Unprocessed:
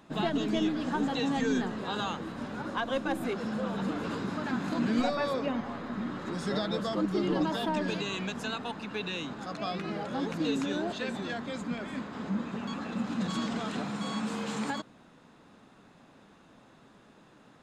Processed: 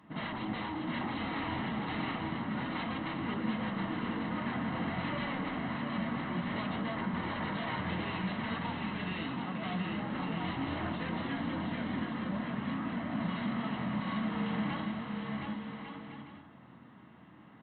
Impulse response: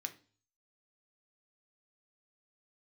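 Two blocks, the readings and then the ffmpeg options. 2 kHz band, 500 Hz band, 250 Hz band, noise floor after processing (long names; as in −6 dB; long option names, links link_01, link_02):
−0.5 dB, −8.0 dB, −3.0 dB, −55 dBFS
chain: -filter_complex "[0:a]aresample=8000,aeval=exprs='0.0266*(abs(mod(val(0)/0.0266+3,4)-2)-1)':channel_layout=same,aresample=44100,tiltshelf=frequency=760:gain=3.5,aecho=1:1:1:0.33,aecho=1:1:720|1152|1411|1567|1660:0.631|0.398|0.251|0.158|0.1[link_01];[1:a]atrim=start_sample=2205,asetrate=36162,aresample=44100[link_02];[link_01][link_02]afir=irnorm=-1:irlink=0"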